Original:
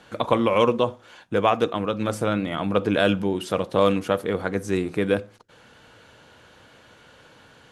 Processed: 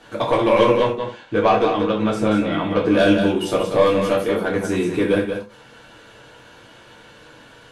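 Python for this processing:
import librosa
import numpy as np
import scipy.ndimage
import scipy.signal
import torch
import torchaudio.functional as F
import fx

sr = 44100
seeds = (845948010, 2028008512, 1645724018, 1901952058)

y = 10.0 ** (-11.5 / 20.0) * np.tanh(x / 10.0 ** (-11.5 / 20.0))
y = fx.air_absorb(y, sr, metres=65.0, at=(0.77, 2.87))
y = y + 10.0 ** (-7.0 / 20.0) * np.pad(y, (int(183 * sr / 1000.0), 0))[:len(y)]
y = fx.rev_gated(y, sr, seeds[0], gate_ms=120, shape='falling', drr_db=-3.5)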